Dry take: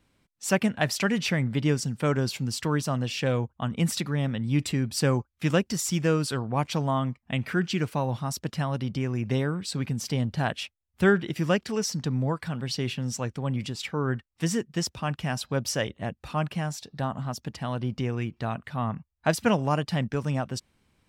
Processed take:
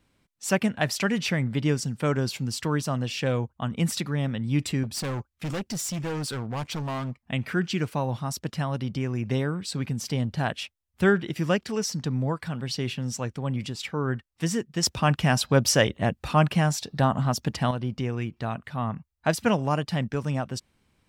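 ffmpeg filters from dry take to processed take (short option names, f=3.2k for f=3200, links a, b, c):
-filter_complex "[0:a]asettb=1/sr,asplit=3[a][b][c];[a]atrim=end=4.834[d];[b]atrim=start=4.83:end=7.2,asetpts=PTS-STARTPTS,afade=t=in:d=0.004:c=qsin,afade=t=out:st=2.366:d=0.004:c=qsin,volume=27.5dB,asoftclip=hard,volume=-27.5dB[e];[c]atrim=start=7.196[f];[d][e]acrossfade=d=0.004:c1=hsin:c2=qsin[g];[g][f]acrossfade=d=0.004:c1=qsin:c2=hsin,asplit=3[h][i][j];[h]atrim=end=14.832[k];[i]atrim=start=14.828:end=17.712,asetpts=PTS-STARTPTS,volume=7.5dB[l];[j]atrim=start=17.708[m];[k][l]acrossfade=d=0.004:c1=hsin:c2=hsin[n];[n][m]acrossfade=d=0.004:c1=hsin:c2=hsin"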